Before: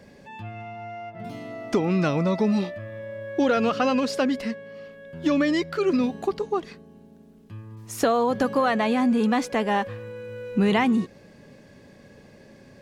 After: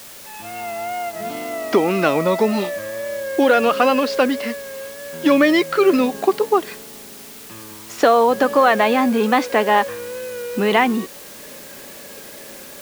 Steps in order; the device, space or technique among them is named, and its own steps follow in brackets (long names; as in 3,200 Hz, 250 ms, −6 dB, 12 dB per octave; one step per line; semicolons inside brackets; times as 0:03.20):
dictaphone (band-pass filter 340–4,300 Hz; automatic gain control gain up to 11.5 dB; tape wow and flutter; white noise bed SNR 20 dB)